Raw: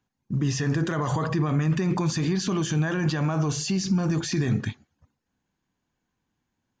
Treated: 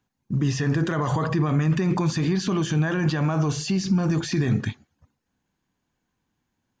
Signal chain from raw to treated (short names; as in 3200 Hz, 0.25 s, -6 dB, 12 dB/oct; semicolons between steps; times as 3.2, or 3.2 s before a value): dynamic EQ 6900 Hz, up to -5 dB, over -46 dBFS, Q 1.1; gain +2 dB